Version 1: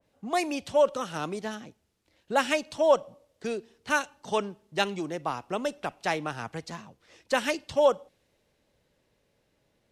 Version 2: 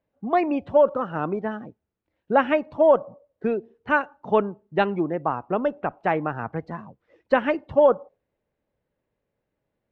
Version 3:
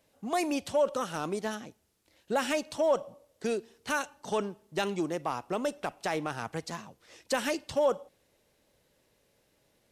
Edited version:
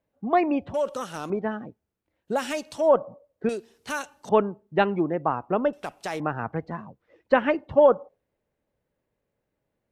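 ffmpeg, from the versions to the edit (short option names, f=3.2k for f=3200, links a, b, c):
-filter_complex "[2:a]asplit=4[a][b][c][d];[1:a]asplit=5[e][f][g][h][i];[e]atrim=end=0.742[j];[a]atrim=start=0.738:end=1.302[k];[f]atrim=start=1.298:end=2.4[l];[b]atrim=start=2.24:end=2.95[m];[g]atrim=start=2.79:end=3.492[n];[c]atrim=start=3.488:end=4.292[o];[h]atrim=start=4.288:end=5.732[p];[d]atrim=start=5.728:end=6.202[q];[i]atrim=start=6.198[r];[j][k]acrossfade=d=0.004:c1=hsin:c2=hsin[s];[s][l]acrossfade=d=0.004:c1=hsin:c2=hsin[t];[t][m]acrossfade=d=0.16:c1=tri:c2=tri[u];[u][n]acrossfade=d=0.16:c1=tri:c2=tri[v];[v][o]acrossfade=d=0.004:c1=hsin:c2=hsin[w];[w][p]acrossfade=d=0.004:c1=hsin:c2=hsin[x];[x][q]acrossfade=d=0.004:c1=hsin:c2=hsin[y];[y][r]acrossfade=d=0.004:c1=hsin:c2=hsin"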